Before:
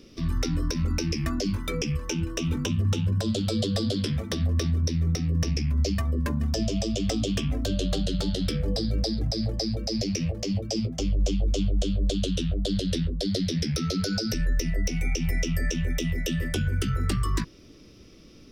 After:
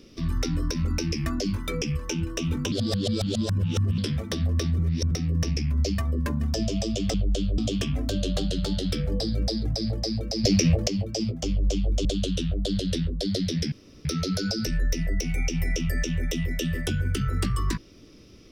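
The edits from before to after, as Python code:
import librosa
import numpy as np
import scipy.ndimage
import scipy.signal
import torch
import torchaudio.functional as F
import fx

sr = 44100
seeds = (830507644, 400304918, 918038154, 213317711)

y = fx.edit(x, sr, fx.reverse_span(start_s=2.72, length_s=1.26),
    fx.reverse_span(start_s=4.79, length_s=0.32),
    fx.clip_gain(start_s=10.0, length_s=0.44, db=7.5),
    fx.move(start_s=11.61, length_s=0.44, to_s=7.14),
    fx.insert_room_tone(at_s=13.72, length_s=0.33), tone=tone)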